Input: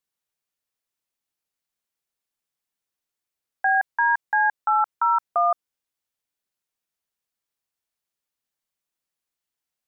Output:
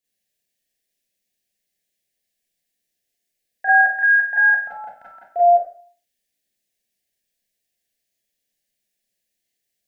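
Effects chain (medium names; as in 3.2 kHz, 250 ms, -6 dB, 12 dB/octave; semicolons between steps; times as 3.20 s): elliptic band-stop 710–1700 Hz, stop band 50 dB; Schroeder reverb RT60 0.45 s, combs from 30 ms, DRR -8 dB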